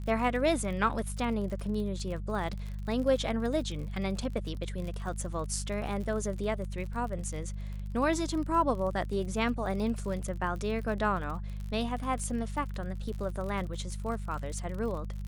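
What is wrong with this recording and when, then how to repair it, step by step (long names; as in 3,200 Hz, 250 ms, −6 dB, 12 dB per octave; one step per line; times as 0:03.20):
surface crackle 44 per second −37 dBFS
mains hum 50 Hz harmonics 4 −37 dBFS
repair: click removal
hum removal 50 Hz, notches 4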